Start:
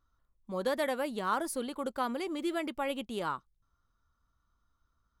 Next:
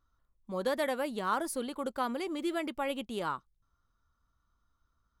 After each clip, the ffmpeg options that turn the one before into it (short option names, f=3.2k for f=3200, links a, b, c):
-af anull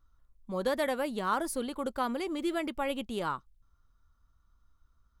-af "lowshelf=f=75:g=11.5,volume=1dB"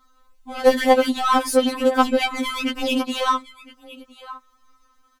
-filter_complex "[0:a]aecho=1:1:1012:0.0631,asplit=2[a][b];[b]highpass=f=720:p=1,volume=23dB,asoftclip=type=tanh:threshold=-16.5dB[c];[a][c]amix=inputs=2:normalize=0,lowpass=f=5.1k:p=1,volume=-6dB,afftfilt=real='re*3.46*eq(mod(b,12),0)':imag='im*3.46*eq(mod(b,12),0)':win_size=2048:overlap=0.75,volume=7dB"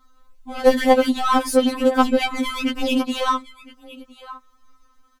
-af "lowshelf=f=240:g=7.5,volume=-1dB"